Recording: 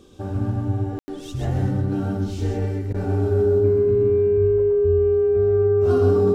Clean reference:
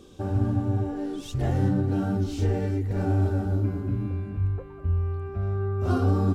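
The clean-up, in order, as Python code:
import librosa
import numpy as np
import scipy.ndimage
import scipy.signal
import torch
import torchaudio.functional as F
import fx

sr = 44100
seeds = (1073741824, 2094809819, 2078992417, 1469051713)

y = fx.notch(x, sr, hz=410.0, q=30.0)
y = fx.fix_ambience(y, sr, seeds[0], print_start_s=0.0, print_end_s=0.5, start_s=0.99, end_s=1.08)
y = fx.fix_interpolate(y, sr, at_s=(2.93,), length_ms=11.0)
y = fx.fix_echo_inverse(y, sr, delay_ms=131, level_db=-5.5)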